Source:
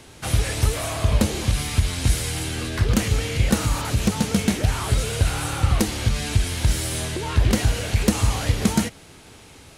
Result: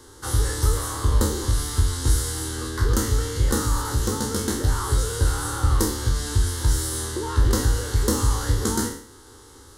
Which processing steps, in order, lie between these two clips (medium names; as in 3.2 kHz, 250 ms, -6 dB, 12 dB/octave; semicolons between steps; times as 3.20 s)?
spectral sustain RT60 0.57 s; static phaser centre 660 Hz, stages 6